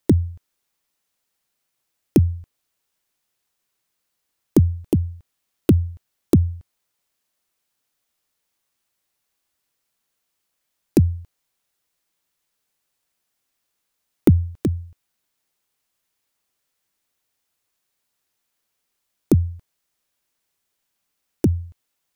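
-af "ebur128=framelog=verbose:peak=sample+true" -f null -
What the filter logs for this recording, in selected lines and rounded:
Integrated loudness:
  I:         -21.3 LUFS
  Threshold: -32.7 LUFS
Loudness range:
  LRA:         6.5 LU
  Threshold: -47.2 LUFS
  LRA low:   -29.7 LUFS
  LRA high:  -23.2 LUFS
Sample peak:
  Peak:       -2.6 dBFS
True peak:
  Peak:       -2.5 dBFS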